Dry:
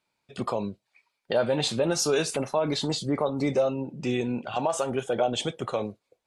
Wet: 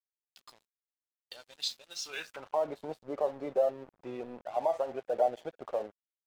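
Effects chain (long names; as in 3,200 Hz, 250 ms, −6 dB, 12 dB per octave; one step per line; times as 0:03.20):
spectral magnitudes quantised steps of 15 dB
band-pass filter sweep 5,000 Hz → 650 Hz, 0:01.85–0:02.66
dead-zone distortion −50.5 dBFS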